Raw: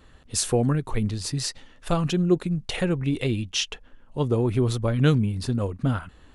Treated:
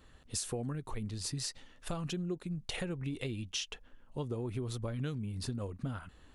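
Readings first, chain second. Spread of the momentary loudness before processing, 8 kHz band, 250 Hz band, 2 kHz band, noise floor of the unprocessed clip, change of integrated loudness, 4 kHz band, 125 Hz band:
8 LU, -10.0 dB, -14.5 dB, -12.0 dB, -53 dBFS, -13.5 dB, -10.5 dB, -14.0 dB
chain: high shelf 4700 Hz +4 dB; compressor 6:1, threshold -27 dBFS, peak gain reduction 13 dB; gain -7 dB

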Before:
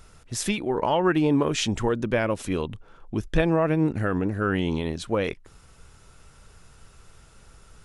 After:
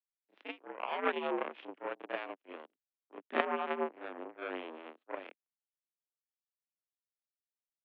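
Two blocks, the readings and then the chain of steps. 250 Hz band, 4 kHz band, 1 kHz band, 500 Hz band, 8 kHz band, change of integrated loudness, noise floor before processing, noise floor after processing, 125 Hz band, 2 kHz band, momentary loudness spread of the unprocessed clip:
-20.5 dB, -15.5 dB, -8.5 dB, -13.0 dB, under -40 dB, -13.5 dB, -53 dBFS, under -85 dBFS, under -40 dB, -9.5 dB, 10 LU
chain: power-law curve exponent 3; reverse echo 32 ms -6.5 dB; mistuned SSB +76 Hz 190–3000 Hz; gain +1.5 dB

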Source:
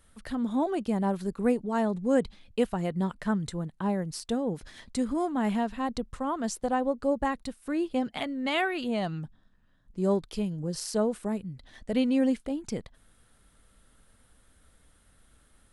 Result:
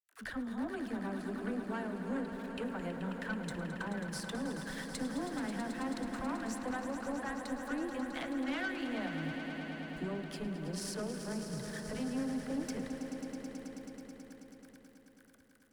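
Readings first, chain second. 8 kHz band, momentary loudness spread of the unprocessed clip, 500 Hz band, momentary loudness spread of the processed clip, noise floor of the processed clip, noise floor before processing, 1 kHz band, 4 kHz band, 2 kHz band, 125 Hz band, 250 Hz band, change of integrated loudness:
-5.0 dB, 9 LU, -11.5 dB, 7 LU, -61 dBFS, -63 dBFS, -10.0 dB, -6.5 dB, -3.0 dB, -8.0 dB, -8.0 dB, -9.0 dB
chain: sample gate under -51 dBFS; bell 1600 Hz +10.5 dB 0.69 oct; compressor, threshold -36 dBFS, peak gain reduction 17 dB; de-hum 120.1 Hz, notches 31; small resonant body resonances 270/1500 Hz, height 6 dB; dispersion lows, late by 70 ms, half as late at 330 Hz; tube stage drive 32 dB, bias 0.4; on a send: swelling echo 0.108 s, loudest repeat 5, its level -11 dB

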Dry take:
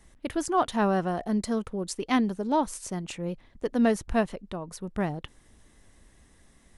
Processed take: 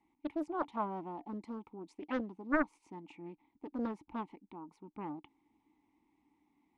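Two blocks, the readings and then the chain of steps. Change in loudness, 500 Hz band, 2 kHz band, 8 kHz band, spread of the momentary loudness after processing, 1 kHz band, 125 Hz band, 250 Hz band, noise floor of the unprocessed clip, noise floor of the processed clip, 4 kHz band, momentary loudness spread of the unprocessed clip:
-11.0 dB, -13.0 dB, -6.5 dB, under -30 dB, 17 LU, -11.0 dB, -18.0 dB, -11.5 dB, -60 dBFS, -79 dBFS, under -20 dB, 11 LU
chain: vowel filter u; bell 890 Hz +5.5 dB 1 oct; Doppler distortion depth 0.63 ms; gain -1.5 dB

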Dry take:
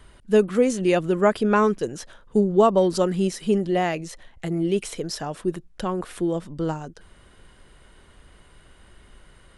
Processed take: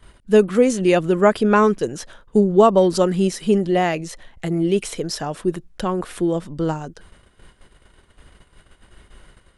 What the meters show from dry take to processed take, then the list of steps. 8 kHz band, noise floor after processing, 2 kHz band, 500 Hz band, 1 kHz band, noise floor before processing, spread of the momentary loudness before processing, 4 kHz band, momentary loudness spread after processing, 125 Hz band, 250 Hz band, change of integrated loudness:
+4.0 dB, -57 dBFS, +4.0 dB, +4.0 dB, +4.0 dB, -53 dBFS, 13 LU, +4.0 dB, 13 LU, +4.0 dB, +4.0 dB, +4.0 dB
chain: gate -49 dBFS, range -10 dB; gain +4 dB

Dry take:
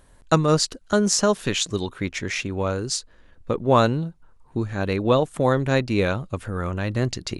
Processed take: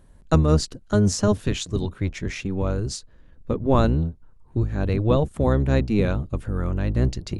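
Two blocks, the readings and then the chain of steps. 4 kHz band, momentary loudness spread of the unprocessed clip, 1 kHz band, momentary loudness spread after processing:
-7.0 dB, 10 LU, -5.0 dB, 10 LU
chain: octaver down 1 oct, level -1 dB; low shelf 480 Hz +9 dB; gain -7 dB

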